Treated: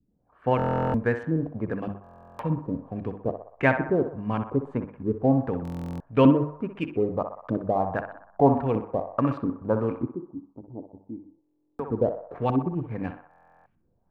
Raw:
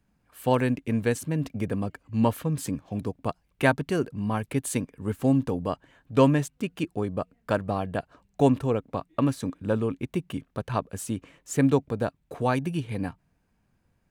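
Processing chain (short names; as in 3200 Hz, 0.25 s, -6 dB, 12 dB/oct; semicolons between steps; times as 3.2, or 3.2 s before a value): high shelf 2500 Hz -11 dB; notches 50/100/150/200/250/300/350 Hz; LFO low-pass saw up 1.6 Hz 260–3300 Hz; in parallel at -11 dB: backlash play -31 dBFS; 10.06–11.56 on the sum: vocal tract filter u; narrowing echo 62 ms, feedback 63%, band-pass 1000 Hz, level -6.5 dB; stuck buffer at 0.57/2.02/5.63/11.42/13.29, samples 1024, times 15; gain -2 dB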